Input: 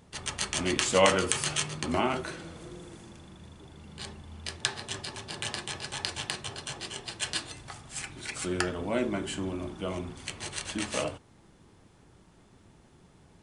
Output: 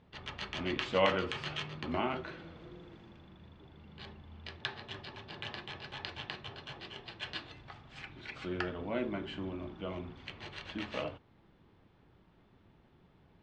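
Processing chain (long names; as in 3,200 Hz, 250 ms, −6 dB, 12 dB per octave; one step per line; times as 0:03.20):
low-pass filter 3,800 Hz 24 dB per octave
level −6 dB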